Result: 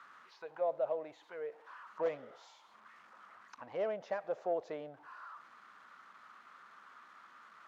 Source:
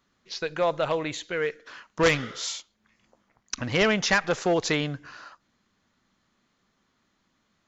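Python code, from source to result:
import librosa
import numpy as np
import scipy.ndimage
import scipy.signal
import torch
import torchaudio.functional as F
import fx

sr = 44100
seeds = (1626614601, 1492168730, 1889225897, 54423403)

y = x + 0.5 * 10.0 ** (-36.0 / 20.0) * np.sign(x)
y = fx.auto_wah(y, sr, base_hz=610.0, top_hz=1400.0, q=3.9, full_db=-22.5, direction='down')
y = y * librosa.db_to_amplitude(-6.0)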